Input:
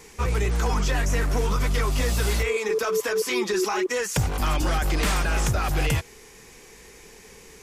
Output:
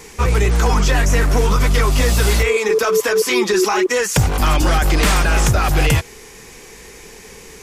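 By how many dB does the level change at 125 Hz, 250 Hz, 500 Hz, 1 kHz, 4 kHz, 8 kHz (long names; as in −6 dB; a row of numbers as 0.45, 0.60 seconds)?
+8.5, +8.5, +8.5, +8.5, +8.5, +8.5 decibels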